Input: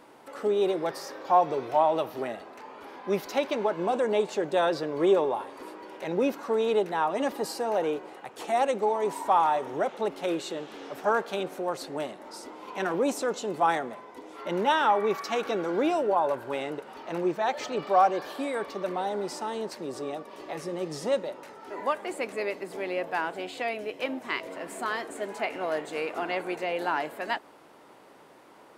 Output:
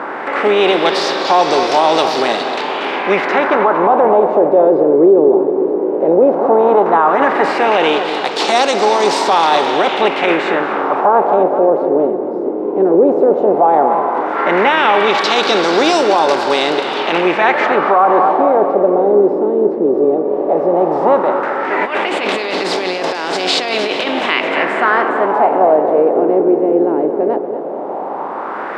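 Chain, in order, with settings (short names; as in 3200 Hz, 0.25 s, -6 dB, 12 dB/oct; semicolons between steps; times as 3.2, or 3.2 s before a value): per-bin compression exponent 0.6; HPF 160 Hz 12 dB/oct; high shelf 3700 Hz +10.5 dB; 21.81–24.26 negative-ratio compressor -28 dBFS, ratio -1; LFO low-pass sine 0.14 Hz 400–5000 Hz; darkening echo 0.231 s, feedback 56%, low-pass 3400 Hz, level -11 dB; maximiser +10 dB; gain -1 dB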